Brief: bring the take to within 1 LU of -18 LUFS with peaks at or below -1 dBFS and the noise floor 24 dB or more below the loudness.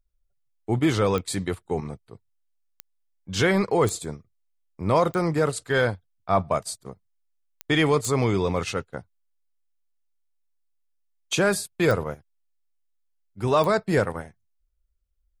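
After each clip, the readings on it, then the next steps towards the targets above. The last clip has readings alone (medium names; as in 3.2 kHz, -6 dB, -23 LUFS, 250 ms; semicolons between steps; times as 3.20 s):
clicks found 8; loudness -24.5 LUFS; peak level -9.5 dBFS; loudness target -18.0 LUFS
-> de-click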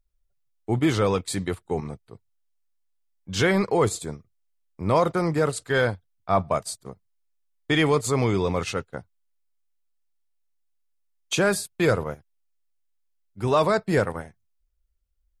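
clicks found 0; loudness -24.0 LUFS; peak level -9.5 dBFS; loudness target -18.0 LUFS
-> trim +6 dB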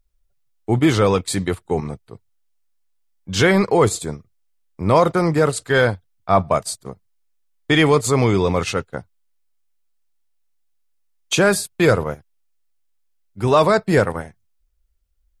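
loudness -18.0 LUFS; peak level -3.5 dBFS; noise floor -65 dBFS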